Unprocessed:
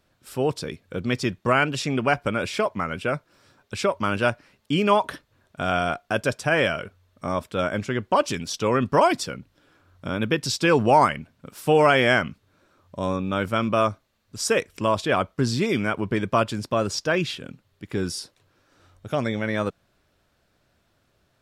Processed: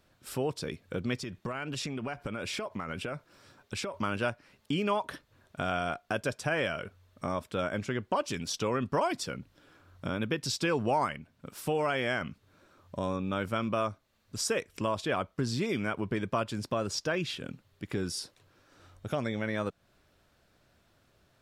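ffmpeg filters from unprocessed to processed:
ffmpeg -i in.wav -filter_complex "[0:a]asettb=1/sr,asplit=3[link_01][link_02][link_03];[link_01]atrim=end=1.174[link_04];[link_02]atrim=start=1.17:end=3.94,asetpts=PTS-STARTPTS,afade=type=in:duration=0.004:curve=qsin,afade=type=out:start_time=2.766:duration=0.004:curve=qsin,acompressor=threshold=-29dB:ratio=10:attack=3.2:release=140:knee=1:detection=peak[link_05];[link_03]atrim=start=3.936[link_06];[link_04][link_05]acrossfade=duration=0.004:curve1=hsin:curve2=qsin[link_07];[link_07][link_06]acrossfade=duration=0.004:curve1=qsin:curve2=hsin,asplit=3[link_08][link_09][link_10];[link_08]atrim=end=11.172[link_11];[link_09]atrim=start=11.168:end=12.212,asetpts=PTS-STARTPTS,volume=-3dB[link_12];[link_10]atrim=start=12.208[link_13];[link_11][link_12]acrossfade=duration=0.004:curve1=hsin:curve2=hsin[link_14];[link_14][link_13]acrossfade=duration=0.004:curve1=hsin:curve2=hsin,acompressor=threshold=-34dB:ratio=2" out.wav

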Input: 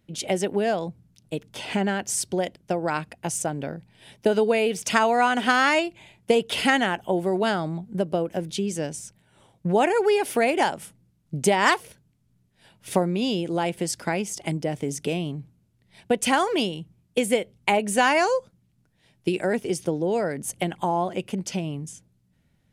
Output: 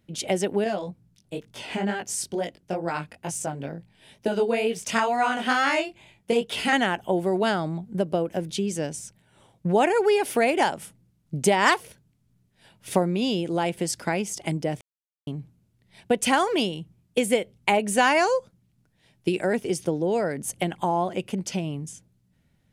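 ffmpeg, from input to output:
ffmpeg -i in.wav -filter_complex "[0:a]asettb=1/sr,asplit=3[link_01][link_02][link_03];[link_01]atrim=end=0.644[link_04];[link_02]atrim=start=0.64:end=6.73,asetpts=PTS-STARTPTS,afade=type=in:duration=0.004:curve=qsin,afade=type=out:start_time=6.086:duration=0.004:curve=qsin,flanger=delay=17.5:depth=4.8:speed=2.2[link_05];[link_03]atrim=start=6.726[link_06];[link_04][link_05]acrossfade=duration=0.004:curve1=hsin:curve2=qsin[link_07];[link_07][link_06]acrossfade=duration=0.004:curve1=qsin:curve2=hsin,asplit=3[link_08][link_09][link_10];[link_08]atrim=end=14.81,asetpts=PTS-STARTPTS,afade=type=out:start_time=14.806:duration=0.004:curve=hsin[link_11];[link_09]atrim=start=14.81:end=15.27,asetpts=PTS-STARTPTS,volume=0[link_12];[link_10]atrim=start=15.27,asetpts=PTS-STARTPTS,afade=type=in:duration=0.004:curve=hsin[link_13];[link_11][link_12][link_13]concat=n=3:v=0:a=1" out.wav

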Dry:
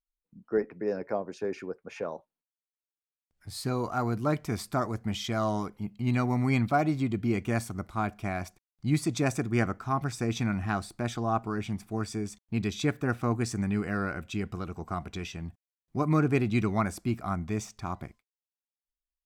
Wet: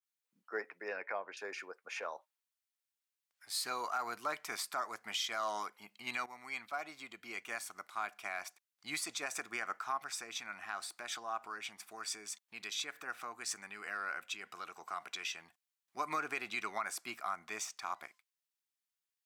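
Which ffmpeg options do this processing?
ffmpeg -i in.wav -filter_complex "[0:a]asettb=1/sr,asplit=3[link_01][link_02][link_03];[link_01]atrim=end=0.884[link_04];[link_02]atrim=start=0.88:end=1.37,asetpts=PTS-STARTPTS,afade=type=in:duration=0.004:curve=qsin,afade=type=out:start_time=0.486:duration=0.004:curve=qsin,lowpass=frequency=2600:width_type=q:width=2.2[link_05];[link_03]atrim=start=1.366[link_06];[link_04][link_05]acrossfade=duration=0.004:curve1=hsin:curve2=qsin[link_07];[link_07][link_06]acrossfade=duration=0.004:curve1=qsin:curve2=hsin,asettb=1/sr,asplit=3[link_08][link_09][link_10];[link_08]atrim=end=9.974[link_11];[link_09]atrim=start=9.97:end=15.97,asetpts=PTS-STARTPTS,afade=type=in:duration=0.004:curve=qsin,afade=type=out:start_time=5.996:duration=0.004:curve=qsin,acompressor=threshold=-34dB:ratio=2.5:attack=3.2:release=140:knee=1:detection=peak[link_12];[link_10]atrim=start=15.966[link_13];[link_11][link_12]acrossfade=duration=0.004:curve1=hsin:curve2=qsin[link_14];[link_14][link_13]acrossfade=duration=0.004:curve1=qsin:curve2=hsin,asplit=2[link_15][link_16];[link_15]atrim=end=6.26,asetpts=PTS-STARTPTS,afade=type=out:start_time=6.256:duration=0.004:curve=hsin:silence=0.223872[link_17];[link_16]atrim=start=6.26,asetpts=PTS-STARTPTS,afade=type=in:duration=2.78:silence=0.223872[link_18];[link_17][link_18]concat=n=2:v=0:a=1,highpass=1200,alimiter=level_in=5.5dB:limit=-24dB:level=0:latency=1:release=110,volume=-5.5dB,adynamicequalizer=threshold=0.00251:dfrequency=2200:dqfactor=0.7:tfrequency=2200:tqfactor=0.7:attack=5:release=100:ratio=0.375:range=1.5:mode=cutabove:tftype=highshelf,volume=4dB" out.wav

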